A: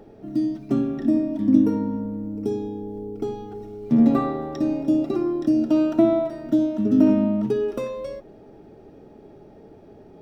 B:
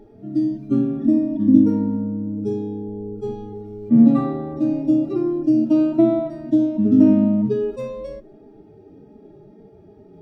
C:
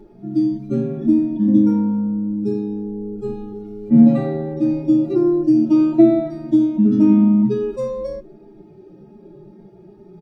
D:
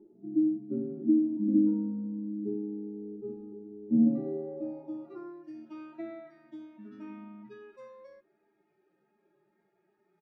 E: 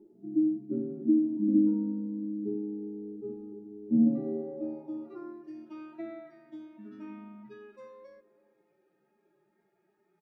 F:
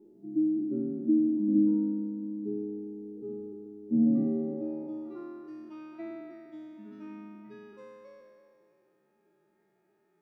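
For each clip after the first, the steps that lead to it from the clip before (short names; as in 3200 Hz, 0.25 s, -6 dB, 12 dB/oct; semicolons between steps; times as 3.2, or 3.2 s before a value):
median-filter separation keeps harmonic; low shelf 390 Hz +11.5 dB; gain -4 dB
comb 5.6 ms, depth 99%
band-pass sweep 310 Hz -> 1800 Hz, 4.2–5.38; gain -8 dB
narrowing echo 0.332 s, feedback 46%, band-pass 350 Hz, level -16.5 dB
spectral trails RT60 2.05 s; gain -2 dB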